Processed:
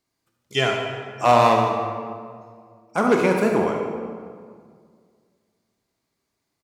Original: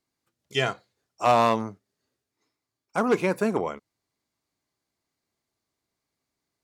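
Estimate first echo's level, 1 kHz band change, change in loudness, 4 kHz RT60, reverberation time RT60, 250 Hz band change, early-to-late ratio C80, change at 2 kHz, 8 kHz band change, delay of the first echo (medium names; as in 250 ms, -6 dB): -10.5 dB, +5.5 dB, +4.0 dB, 1.2 s, 2.0 s, +5.0 dB, 4.5 dB, +5.0 dB, +4.5 dB, 75 ms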